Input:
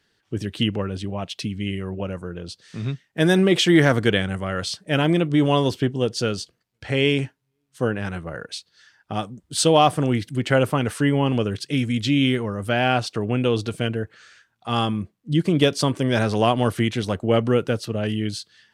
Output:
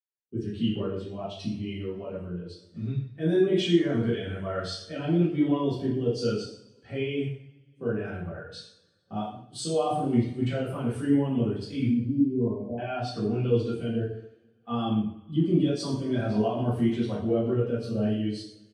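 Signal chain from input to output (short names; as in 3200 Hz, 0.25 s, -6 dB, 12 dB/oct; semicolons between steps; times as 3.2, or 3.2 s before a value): gate -44 dBFS, range -10 dB; HPF 55 Hz 24 dB/oct; notches 50/100/150/200/250/300 Hz; limiter -15.5 dBFS, peak gain reduction 12.5 dB; 11.89–12.78 brick-wall FIR low-pass 1100 Hz; outdoor echo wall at 21 m, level -14 dB; two-slope reverb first 0.72 s, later 3.1 s, from -18 dB, DRR -8 dB; spectral expander 1.5:1; gain -7.5 dB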